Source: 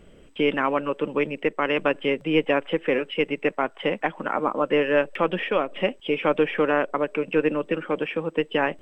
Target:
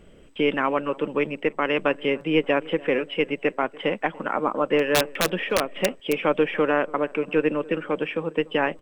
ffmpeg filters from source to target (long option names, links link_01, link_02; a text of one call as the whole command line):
ffmpeg -i in.wav -filter_complex "[0:a]asplit=3[link_01][link_02][link_03];[link_01]afade=type=out:start_time=4.79:duration=0.02[link_04];[link_02]aeval=exprs='(mod(3.98*val(0)+1,2)-1)/3.98':channel_layout=same,afade=type=in:start_time=4.79:duration=0.02,afade=type=out:start_time=6.21:duration=0.02[link_05];[link_03]afade=type=in:start_time=6.21:duration=0.02[link_06];[link_04][link_05][link_06]amix=inputs=3:normalize=0,asplit=2[link_07][link_08];[link_08]adelay=289,lowpass=frequency=1200:poles=1,volume=-21dB,asplit=2[link_09][link_10];[link_10]adelay=289,lowpass=frequency=1200:poles=1,volume=0.51,asplit=2[link_11][link_12];[link_12]adelay=289,lowpass=frequency=1200:poles=1,volume=0.51,asplit=2[link_13][link_14];[link_14]adelay=289,lowpass=frequency=1200:poles=1,volume=0.51[link_15];[link_09][link_11][link_13][link_15]amix=inputs=4:normalize=0[link_16];[link_07][link_16]amix=inputs=2:normalize=0" out.wav